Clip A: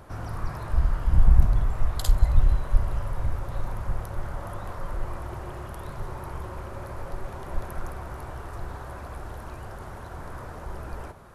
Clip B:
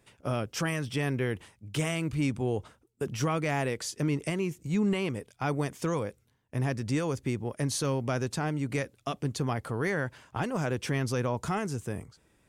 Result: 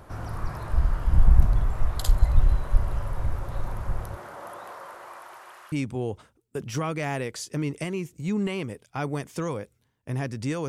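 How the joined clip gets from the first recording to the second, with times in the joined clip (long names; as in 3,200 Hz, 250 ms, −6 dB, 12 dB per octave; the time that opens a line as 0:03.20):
clip A
0:04.15–0:05.72: high-pass filter 260 Hz → 1,400 Hz
0:05.72: continue with clip B from 0:02.18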